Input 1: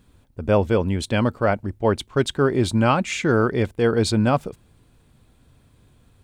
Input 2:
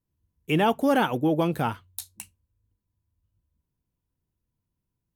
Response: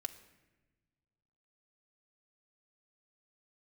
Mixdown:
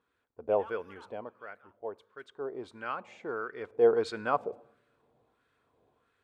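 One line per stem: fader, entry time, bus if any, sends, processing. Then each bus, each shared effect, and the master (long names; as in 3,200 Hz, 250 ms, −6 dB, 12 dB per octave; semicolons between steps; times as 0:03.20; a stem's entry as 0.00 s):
0:00.82 −5.5 dB → 0:01.35 −16 dB → 0:02.20 −16 dB → 0:02.73 −9 dB → 0:03.54 −9 dB → 0:03.84 −1 dB, 0.00 s, send −5 dB, parametric band 460 Hz +9 dB 0.49 octaves
−1.0 dB, 0.00 s, no send, Butterworth high-pass 960 Hz; automatic ducking −21 dB, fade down 1.40 s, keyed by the first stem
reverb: on, RT60 1.1 s, pre-delay 3 ms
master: parametric band 1,100 Hz −5 dB 2.8 octaves; auto-filter band-pass sine 1.5 Hz 740–1,600 Hz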